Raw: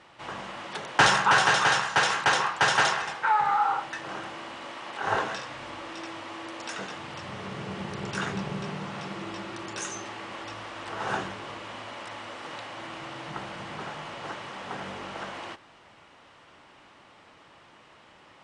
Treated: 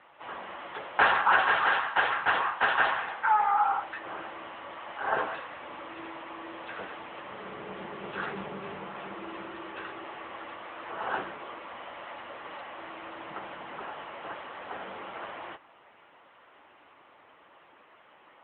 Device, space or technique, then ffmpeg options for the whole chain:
telephone: -af "highpass=300,lowpass=3k" -ar 8000 -c:a libopencore_amrnb -b:a 10200

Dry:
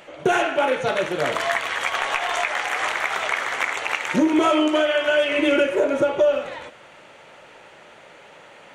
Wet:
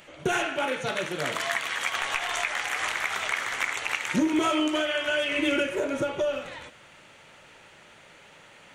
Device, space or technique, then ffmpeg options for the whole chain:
smiley-face EQ: -filter_complex "[0:a]lowshelf=f=180:g=5.5,equalizer=f=580:t=o:w=2:g=-6.5,highshelf=f=5.3k:g=5.5,asettb=1/sr,asplit=3[a][b][c];[a]atrim=end=0.654[d];[b]atrim=start=0.65:end=1.96,asetpts=PTS-STARTPTS,afade=t=in:d=0.004:c=qsin,afade=t=out:st=1.306:d=0.004:c=qsin,highpass=130[e];[c]atrim=start=1.956[f];[d][e]acrossfade=d=0.004:c1=hsin:c2=qsin[g];[g][f]acrossfade=d=0.004:c1=qsin:c2=hsin,volume=-3.5dB"

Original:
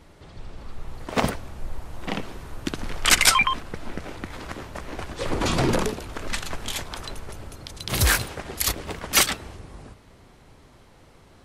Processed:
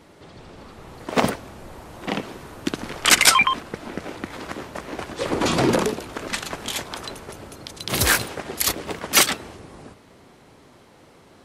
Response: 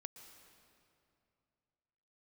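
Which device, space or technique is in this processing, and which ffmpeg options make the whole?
filter by subtraction: -filter_complex "[0:a]asplit=2[a][b];[b]lowpass=280,volume=-1[c];[a][c]amix=inputs=2:normalize=0,volume=2.5dB"

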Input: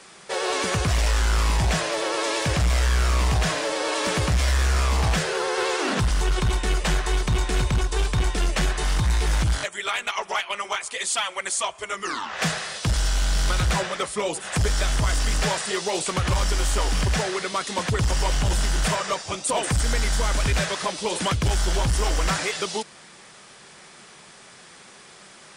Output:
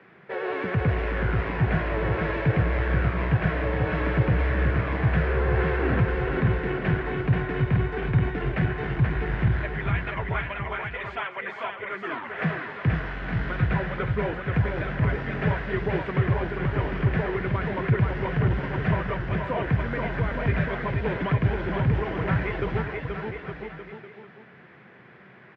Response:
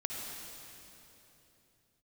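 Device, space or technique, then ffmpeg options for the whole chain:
bass cabinet: -filter_complex "[0:a]highpass=f=69:w=0.5412,highpass=f=69:w=1.3066,equalizer=f=130:t=q:w=4:g=6,equalizer=f=580:t=q:w=4:g=-5,equalizer=f=850:t=q:w=4:g=-7,equalizer=f=1.2k:t=q:w=4:g=-8,lowpass=f=2k:w=0.5412,lowpass=f=2k:w=1.3066,asettb=1/sr,asplit=3[a][b][c];[a]atrim=end=16.244[d];[b]atrim=start=16.24:end=16.74,asetpts=PTS-STARTPTS,afade=t=in:d=0.004:c=qsin,afade=t=out:st=0.496:d=0.004:c=qsin,acrossover=split=2500[e][f];[f]acompressor=threshold=-52dB:ratio=4:attack=1:release=60[g];[e][g]amix=inputs=2:normalize=0[h];[c]atrim=start=16.736[i];[d][h]acrossfade=d=0.004:c1=hsin:c2=qsin[j];[j][i]acrossfade=d=0.004:c1=qsin:c2=hsin,aecho=1:1:480|864|1171|1417|1614:0.631|0.398|0.251|0.158|0.1"

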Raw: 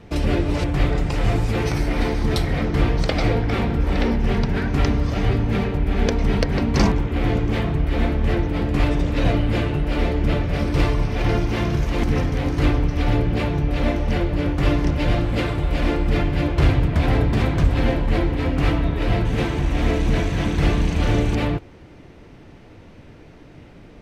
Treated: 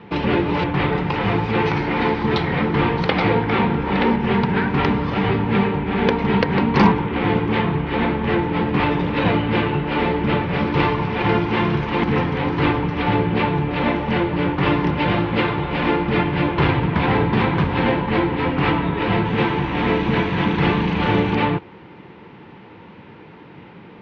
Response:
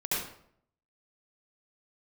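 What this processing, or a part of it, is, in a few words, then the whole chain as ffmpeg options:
kitchen radio: -af "highpass=170,equalizer=f=190:t=q:w=4:g=4,equalizer=f=270:t=q:w=4:g=-6,equalizer=f=640:t=q:w=4:g=-10,equalizer=f=920:t=q:w=4:g=8,lowpass=f=3.5k:w=0.5412,lowpass=f=3.5k:w=1.3066,volume=6dB"

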